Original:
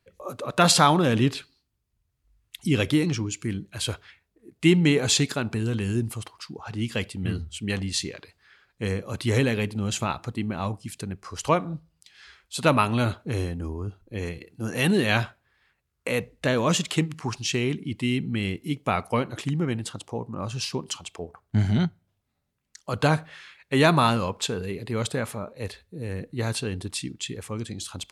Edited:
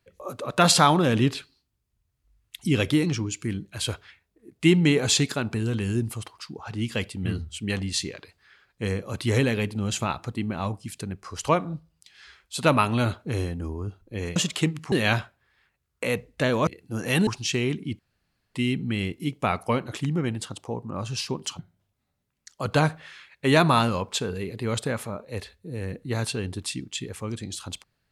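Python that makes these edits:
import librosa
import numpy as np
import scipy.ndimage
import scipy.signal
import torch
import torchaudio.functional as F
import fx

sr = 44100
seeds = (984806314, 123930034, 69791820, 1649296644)

y = fx.edit(x, sr, fx.swap(start_s=14.36, length_s=0.6, other_s=16.71, other_length_s=0.56),
    fx.insert_room_tone(at_s=17.99, length_s=0.56),
    fx.cut(start_s=21.03, length_s=0.84), tone=tone)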